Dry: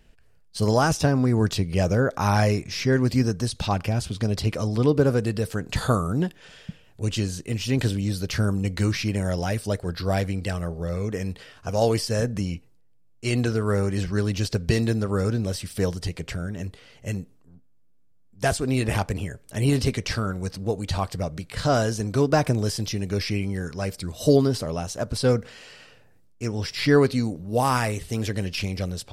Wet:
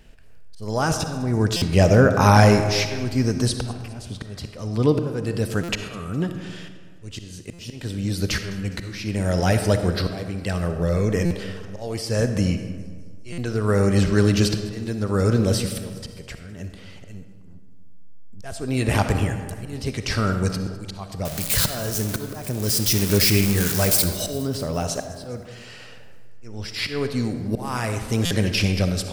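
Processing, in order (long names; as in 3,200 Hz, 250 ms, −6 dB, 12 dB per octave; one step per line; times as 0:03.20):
0:21.25–0:24.04: spike at every zero crossing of −18.5 dBFS
volume swells 721 ms
delay with a high-pass on its return 205 ms, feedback 54%, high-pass 5,200 Hz, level −17.5 dB
convolution reverb RT60 1.7 s, pre-delay 20 ms, DRR 7 dB
buffer that repeats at 0:01.56/0:05.63/0:07.53/0:11.25/0:13.32/0:28.25, samples 256, times 9
level +6.5 dB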